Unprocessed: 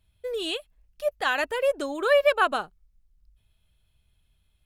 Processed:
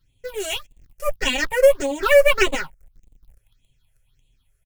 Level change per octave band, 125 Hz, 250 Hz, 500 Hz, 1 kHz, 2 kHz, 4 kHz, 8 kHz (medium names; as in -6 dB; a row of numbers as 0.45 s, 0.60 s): no reading, +6.0 dB, +6.5 dB, -0.5 dB, +5.0 dB, +5.5 dB, +14.0 dB